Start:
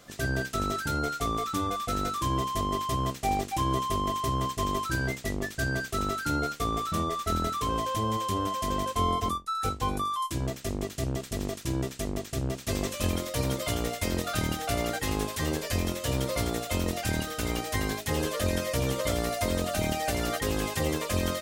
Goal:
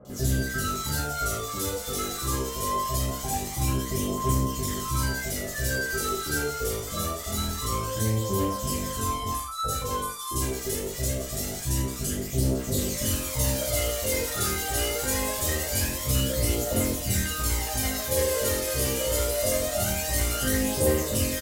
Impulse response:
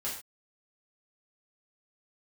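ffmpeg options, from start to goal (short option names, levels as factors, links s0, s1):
-filter_complex "[0:a]aphaser=in_gain=1:out_gain=1:delay=2.6:decay=0.58:speed=0.24:type=triangular,asplit=2[s0][s1];[s1]acompressor=threshold=0.0251:ratio=6,volume=1.41[s2];[s0][s2]amix=inputs=2:normalize=0,aemphasis=mode=production:type=cd,acrossover=split=1000|3300[s3][s4][s5];[s5]adelay=50[s6];[s4]adelay=100[s7];[s3][s7][s6]amix=inputs=3:normalize=0[s8];[1:a]atrim=start_sample=2205[s9];[s8][s9]afir=irnorm=-1:irlink=0,volume=0.501"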